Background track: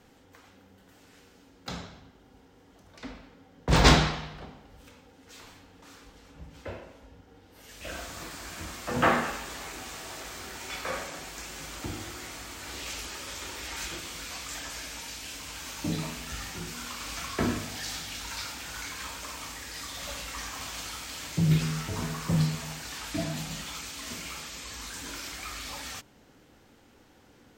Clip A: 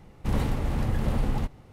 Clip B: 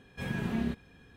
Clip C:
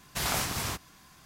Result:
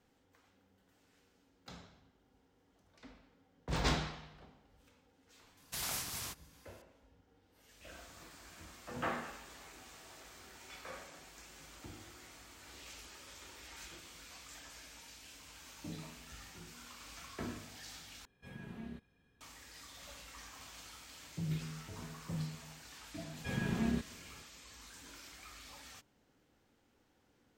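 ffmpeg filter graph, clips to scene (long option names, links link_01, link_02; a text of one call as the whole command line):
ffmpeg -i bed.wav -i cue0.wav -i cue1.wav -i cue2.wav -filter_complex "[2:a]asplit=2[link_01][link_02];[0:a]volume=-14.5dB[link_03];[3:a]highshelf=frequency=2800:gain=9[link_04];[link_03]asplit=2[link_05][link_06];[link_05]atrim=end=18.254[link_07];[link_01]atrim=end=1.16,asetpts=PTS-STARTPTS,volume=-15.5dB[link_08];[link_06]atrim=start=19.406[link_09];[link_04]atrim=end=1.25,asetpts=PTS-STARTPTS,volume=-14.5dB,afade=type=in:duration=0.004:curve=hsin,afade=type=out:start_time=1.246:duration=0.004:curve=hsin,adelay=245637S[link_10];[link_02]atrim=end=1.16,asetpts=PTS-STARTPTS,volume=-2.5dB,afade=type=in:duration=0.004:curve=hsin,afade=type=out:start_time=1.156:duration=0.004:curve=hsin,adelay=23270[link_11];[link_07][link_08]acrossfade=duration=0.004:curve1=hsin:curve2=hsin[link_12];[link_12][link_09]acrossfade=duration=0.004:curve1=hsin:curve2=hsin[link_13];[link_13][link_10][link_11]amix=inputs=3:normalize=0" out.wav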